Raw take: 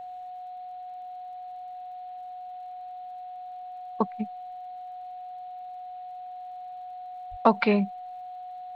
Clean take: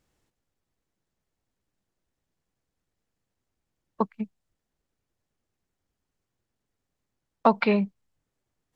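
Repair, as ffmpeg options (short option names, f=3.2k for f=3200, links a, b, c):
-filter_complex "[0:a]adeclick=t=4,bandreject=f=730:w=30,asplit=3[a][b][c];[a]afade=t=out:st=7.3:d=0.02[d];[b]highpass=f=140:w=0.5412,highpass=f=140:w=1.3066,afade=t=in:st=7.3:d=0.02,afade=t=out:st=7.42:d=0.02[e];[c]afade=t=in:st=7.42:d=0.02[f];[d][e][f]amix=inputs=3:normalize=0,agate=range=-21dB:threshold=-32dB"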